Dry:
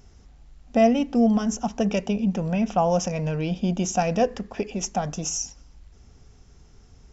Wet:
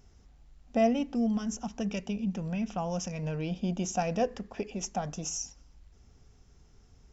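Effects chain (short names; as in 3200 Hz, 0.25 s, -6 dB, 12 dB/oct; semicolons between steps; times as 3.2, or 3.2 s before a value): 1.06–3.23 dynamic EQ 630 Hz, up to -7 dB, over -34 dBFS, Q 0.76; gain -7 dB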